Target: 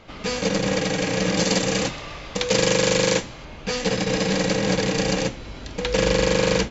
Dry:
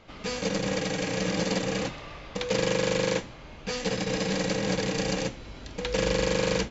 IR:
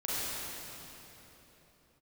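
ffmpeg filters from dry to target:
-filter_complex "[0:a]asettb=1/sr,asplit=3[link_01][link_02][link_03];[link_01]atrim=end=1.374[link_04];[link_02]atrim=start=1.37:end=3.45,asetpts=PTS-STARTPTS,afade=type=in:duration=0.004:curve=qsin,afade=type=out:start_time=2.076:duration=0.004:curve=qsin,aemphasis=mode=production:type=cd[link_05];[link_03]atrim=start=3.446[link_06];[link_04][link_05]acrossfade=duration=0.004:curve1=hsin:curve2=qsin[link_07];[link_07][link_06]acrossfade=duration=0.004:curve1=qsin:curve2=hsin,volume=6dB"

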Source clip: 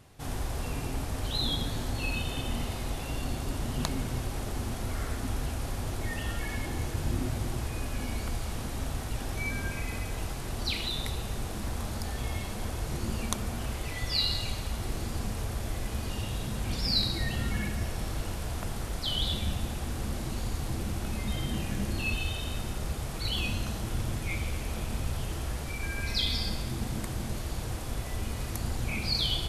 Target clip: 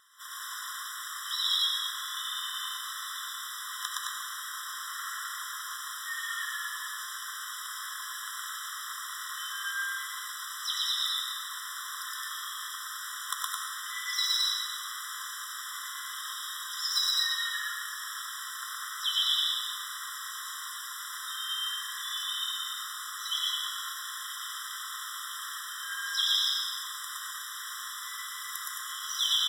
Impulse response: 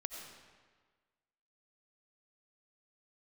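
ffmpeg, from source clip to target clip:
-filter_complex "[0:a]highpass=frequency=650:poles=1,asplit=2[link_01][link_02];[link_02]asetrate=58866,aresample=44100,atempo=0.749154,volume=-11dB[link_03];[link_01][link_03]amix=inputs=2:normalize=0,aecho=1:1:116.6|215.7:0.891|0.631[link_04];[1:a]atrim=start_sample=2205,afade=type=out:start_time=0.31:duration=0.01,atrim=end_sample=14112[link_05];[link_04][link_05]afir=irnorm=-1:irlink=0,aeval=exprs='clip(val(0),-1,0.0447)':channel_layout=same,afftfilt=real='re*eq(mod(floor(b*sr/1024/1000),2),1)':imag='im*eq(mod(floor(b*sr/1024/1000),2),1)':win_size=1024:overlap=0.75,volume=6.5dB"

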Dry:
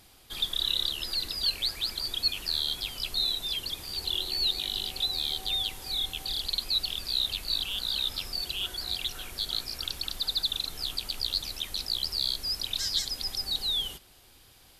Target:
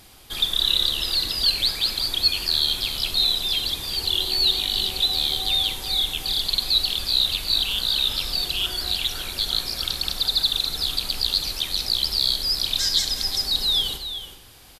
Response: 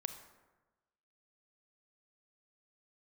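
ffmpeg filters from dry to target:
-filter_complex "[0:a]aecho=1:1:374:0.299[link_01];[1:a]atrim=start_sample=2205[link_02];[link_01][link_02]afir=irnorm=-1:irlink=0,volume=9dB"

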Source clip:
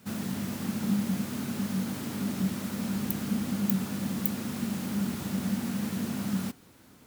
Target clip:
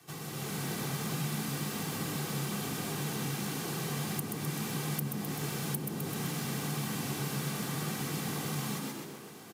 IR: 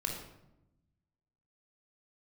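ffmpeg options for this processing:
-filter_complex "[0:a]asetrate=32667,aresample=44100,highpass=frequency=130:width=0.5412,highpass=frequency=130:width=1.3066,aecho=1:1:2.6:0.67,asplit=2[link_01][link_02];[link_02]asplit=5[link_03][link_04][link_05][link_06][link_07];[link_03]adelay=128,afreqshift=64,volume=-5dB[link_08];[link_04]adelay=256,afreqshift=128,volume=-12.3dB[link_09];[link_05]adelay=384,afreqshift=192,volume=-19.7dB[link_10];[link_06]adelay=512,afreqshift=256,volume=-27dB[link_11];[link_07]adelay=640,afreqshift=320,volume=-34.3dB[link_12];[link_08][link_09][link_10][link_11][link_12]amix=inputs=5:normalize=0[link_13];[link_01][link_13]amix=inputs=2:normalize=0,acrossover=split=170|730[link_14][link_15][link_16];[link_14]acompressor=threshold=-46dB:ratio=4[link_17];[link_15]acompressor=threshold=-45dB:ratio=4[link_18];[link_16]acompressor=threshold=-43dB:ratio=4[link_19];[link_17][link_18][link_19]amix=inputs=3:normalize=0,asplit=2[link_20][link_21];[link_21]adelay=267,lowpass=frequency=2000:poles=1,volume=-11dB,asplit=2[link_22][link_23];[link_23]adelay=267,lowpass=frequency=2000:poles=1,volume=0.49,asplit=2[link_24][link_25];[link_25]adelay=267,lowpass=frequency=2000:poles=1,volume=0.49,asplit=2[link_26][link_27];[link_27]adelay=267,lowpass=frequency=2000:poles=1,volume=0.49,asplit=2[link_28][link_29];[link_29]adelay=267,lowpass=frequency=2000:poles=1,volume=0.49[link_30];[link_22][link_24][link_26][link_28][link_30]amix=inputs=5:normalize=0[link_31];[link_20][link_31]amix=inputs=2:normalize=0,dynaudnorm=framelen=160:gausssize=5:maxgain=6.5dB,volume=-1.5dB"

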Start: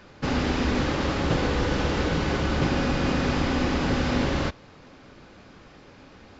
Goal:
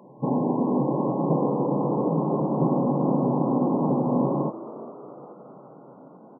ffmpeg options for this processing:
ffmpeg -i in.wav -filter_complex "[0:a]afftfilt=real='re*between(b*sr/4096,120,1100)':imag='im*between(b*sr/4096,120,1100)':win_size=4096:overlap=0.75,asplit=6[link_01][link_02][link_03][link_04][link_05][link_06];[link_02]adelay=416,afreqshift=82,volume=-16dB[link_07];[link_03]adelay=832,afreqshift=164,volume=-21.7dB[link_08];[link_04]adelay=1248,afreqshift=246,volume=-27.4dB[link_09];[link_05]adelay=1664,afreqshift=328,volume=-33dB[link_10];[link_06]adelay=2080,afreqshift=410,volume=-38.7dB[link_11];[link_01][link_07][link_08][link_09][link_10][link_11]amix=inputs=6:normalize=0,volume=3dB" out.wav

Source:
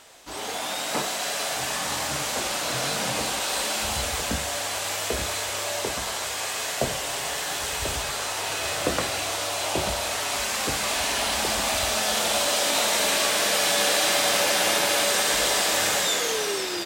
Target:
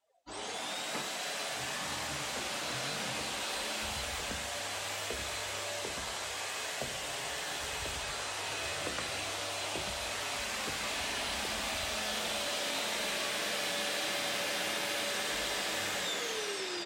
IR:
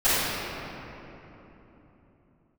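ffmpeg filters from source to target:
-filter_complex "[0:a]bandreject=frequency=56.06:width_type=h:width=4,bandreject=frequency=112.12:width_type=h:width=4,bandreject=frequency=168.18:width_type=h:width=4,bandreject=frequency=224.24:width_type=h:width=4,bandreject=frequency=280.3:width_type=h:width=4,bandreject=frequency=336.36:width_type=h:width=4,bandreject=frequency=392.42:width_type=h:width=4,bandreject=frequency=448.48:width_type=h:width=4,bandreject=frequency=504.54:width_type=h:width=4,bandreject=frequency=560.6:width_type=h:width=4,bandreject=frequency=616.66:width_type=h:width=4,bandreject=frequency=672.72:width_type=h:width=4,bandreject=frequency=728.78:width_type=h:width=4,bandreject=frequency=784.84:width_type=h:width=4,bandreject=frequency=840.9:width_type=h:width=4,bandreject=frequency=896.96:width_type=h:width=4,bandreject=frequency=953.02:width_type=h:width=4,bandreject=frequency=1009.08:width_type=h:width=4,bandreject=frequency=1065.14:width_type=h:width=4,bandreject=frequency=1121.2:width_type=h:width=4,bandreject=frequency=1177.26:width_type=h:width=4,bandreject=frequency=1233.32:width_type=h:width=4,bandreject=frequency=1289.38:width_type=h:width=4,bandreject=frequency=1345.44:width_type=h:width=4,bandreject=frequency=1401.5:width_type=h:width=4,bandreject=frequency=1457.56:width_type=h:width=4,bandreject=frequency=1513.62:width_type=h:width=4,bandreject=frequency=1569.68:width_type=h:width=4,bandreject=frequency=1625.74:width_type=h:width=4,bandreject=frequency=1681.8:width_type=h:width=4,afftdn=noise_reduction=29:noise_floor=-43,acrossover=split=440|1300|4100[link_01][link_02][link_03][link_04];[link_01]acompressor=threshold=-37dB:ratio=4[link_05];[link_02]acompressor=threshold=-38dB:ratio=4[link_06];[link_03]acompressor=threshold=-29dB:ratio=4[link_07];[link_04]acompressor=threshold=-37dB:ratio=4[link_08];[link_05][link_06][link_07][link_08]amix=inputs=4:normalize=0,volume=-6dB"

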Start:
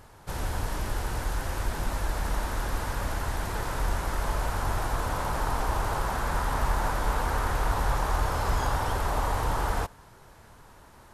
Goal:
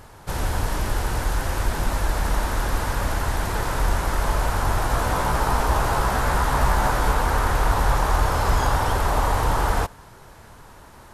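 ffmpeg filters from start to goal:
ffmpeg -i in.wav -filter_complex "[0:a]asettb=1/sr,asplit=3[link_01][link_02][link_03];[link_01]atrim=end=4.884[link_04];[link_02]atrim=start=4.88:end=7.12,asetpts=PTS-STARTPTS,afade=type=in:duration=0.004:curve=qsin,afade=type=out:start_time=2.236:duration=0.004:curve=qsin,asplit=2[link_05][link_06];[link_06]adelay=16,volume=-5.5dB[link_07];[link_05][link_07]amix=inputs=2:normalize=0,atrim=end_sample=98784[link_08];[link_03]atrim=start=7.116[link_09];[link_04][link_08]acrossfade=duration=0.004:curve1=hsin:curve2=qsin[link_10];[link_10][link_09]acrossfade=duration=0.004:curve1=qsin:curve2=hsin,volume=6.5dB" out.wav

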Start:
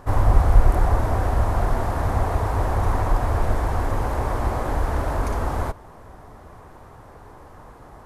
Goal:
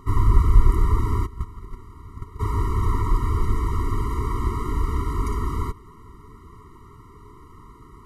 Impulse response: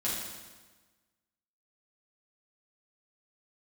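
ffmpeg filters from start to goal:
-filter_complex "[0:a]asplit=3[link_01][link_02][link_03];[link_01]afade=type=out:start_time=1.25:duration=0.02[link_04];[link_02]agate=range=-18dB:threshold=-15dB:ratio=16:detection=peak,afade=type=in:start_time=1.25:duration=0.02,afade=type=out:start_time=2.39:duration=0.02[link_05];[link_03]afade=type=in:start_time=2.39:duration=0.02[link_06];[link_04][link_05][link_06]amix=inputs=3:normalize=0,afftfilt=real='re*eq(mod(floor(b*sr/1024/460),2),0)':imag='im*eq(mod(floor(b*sr/1024/460),2),0)':win_size=1024:overlap=0.75"

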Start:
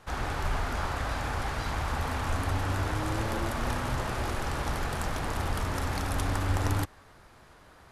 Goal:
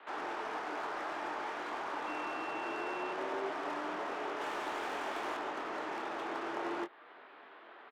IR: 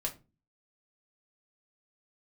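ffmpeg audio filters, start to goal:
-filter_complex "[0:a]bandreject=frequency=470:width=12,highpass=frequency=260:width_type=q:width=0.5412,highpass=frequency=260:width_type=q:width=1.307,lowpass=frequency=3400:width_type=q:width=0.5176,lowpass=frequency=3400:width_type=q:width=0.7071,lowpass=frequency=3400:width_type=q:width=1.932,afreqshift=51,asplit=2[link_01][link_02];[link_02]acompressor=threshold=-48dB:ratio=6,volume=1dB[link_03];[link_01][link_03]amix=inputs=2:normalize=0,asettb=1/sr,asplit=3[link_04][link_05][link_06];[link_04]atrim=end=4.404[link_07];[link_05]atrim=start=4.4:end=5.37,asetpts=PTS-STARTPTS,afade=type=in:duration=0.004:curve=qsin,afade=type=out:start_time=0.966:duration=0.004:curve=qsin,highshelf=frequency=2000:gain=9[link_08];[link_06]atrim=start=5.366[link_09];[link_07][link_08]acrossfade=duration=0.004:curve1=hsin:curve2=qsin[link_10];[link_10][link_09]acrossfade=duration=0.004:curve1=qsin:curve2=hsin,acrossover=split=680|980[link_11][link_12][link_13];[link_13]asoftclip=type=tanh:threshold=-39dB[link_14];[link_11][link_12][link_14]amix=inputs=3:normalize=0,asplit=2[link_15][link_16];[link_16]adelay=23,volume=-7.5dB[link_17];[link_15][link_17]amix=inputs=2:normalize=0,asettb=1/sr,asplit=3[link_18][link_19][link_20];[link_18]atrim=end=2.074[link_21];[link_19]atrim=start=2.07:end=3.13,asetpts=PTS-STARTPTS,afade=type=in:duration=0.004:curve=qsin,afade=type=out:start_time=1.056:duration=0.004:curve=qsin,aeval=exprs='val(0)+0.00794*sin(2*PI*2700*n/s)':channel_layout=same[link_22];[link_20]atrim=start=3.126[link_23];[link_21][link_22]acrossfade=duration=0.004:curve1=hsin:curve2=qsin[link_24];[link_24][link_23]acrossfade=duration=0.004:curve1=qsin:curve2=hsin,volume=-4.5dB"

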